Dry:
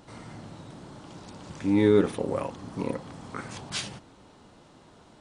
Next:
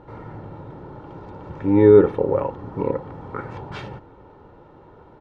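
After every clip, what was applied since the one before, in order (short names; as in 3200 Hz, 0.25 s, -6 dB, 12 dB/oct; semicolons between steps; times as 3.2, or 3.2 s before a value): LPF 1300 Hz 12 dB/oct; comb 2.2 ms, depth 51%; gain +7 dB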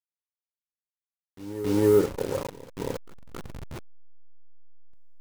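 level-crossing sampler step -22.5 dBFS; pre-echo 0.271 s -13.5 dB; gain -8 dB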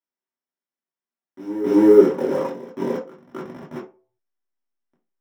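reverb RT60 0.40 s, pre-delay 3 ms, DRR -4 dB; gain -10 dB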